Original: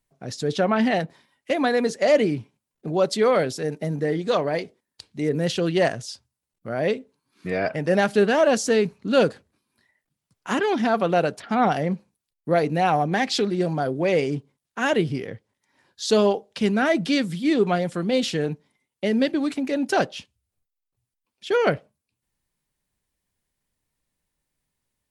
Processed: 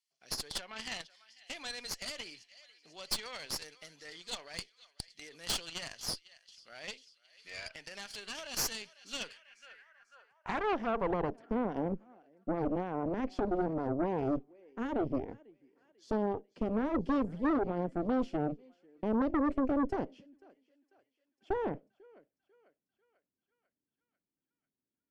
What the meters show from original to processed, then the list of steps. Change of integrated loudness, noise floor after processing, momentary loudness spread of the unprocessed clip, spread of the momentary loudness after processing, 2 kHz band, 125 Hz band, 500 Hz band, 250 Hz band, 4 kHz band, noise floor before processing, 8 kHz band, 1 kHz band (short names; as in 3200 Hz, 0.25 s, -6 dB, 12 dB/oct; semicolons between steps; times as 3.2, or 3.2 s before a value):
-12.5 dB, under -85 dBFS, 13 LU, 16 LU, -16.0 dB, -14.5 dB, -15.5 dB, -10.5 dB, -9.0 dB, -84 dBFS, -6.0 dB, -13.0 dB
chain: notch 3800 Hz, Q 5.4; thinning echo 0.494 s, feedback 65%, high-pass 830 Hz, level -21.5 dB; limiter -16 dBFS, peak gain reduction 9.5 dB; band-pass sweep 4100 Hz -> 290 Hz, 9.05–11.41; high shelf 2600 Hz +7.5 dB; added harmonics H 5 -16 dB, 8 -10 dB, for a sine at -14.5 dBFS; gain -7.5 dB